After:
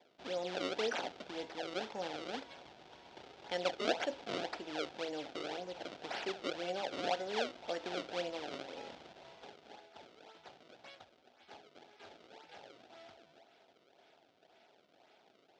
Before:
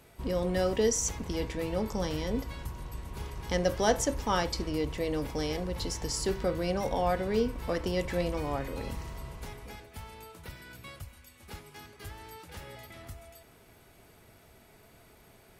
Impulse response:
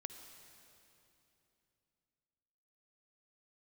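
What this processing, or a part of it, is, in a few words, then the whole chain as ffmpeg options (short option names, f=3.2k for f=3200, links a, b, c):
circuit-bent sampling toy: -af "acrusher=samples=30:mix=1:aa=0.000001:lfo=1:lforange=48:lforate=1.9,highpass=430,equalizer=f=460:t=q:w=4:g=-3,equalizer=f=740:t=q:w=4:g=5,equalizer=f=1.1k:t=q:w=4:g=-9,equalizer=f=1.9k:t=q:w=4:g=-4,equalizer=f=3.4k:t=q:w=4:g=4,lowpass=f=5.4k:w=0.5412,lowpass=f=5.4k:w=1.3066,volume=-4.5dB"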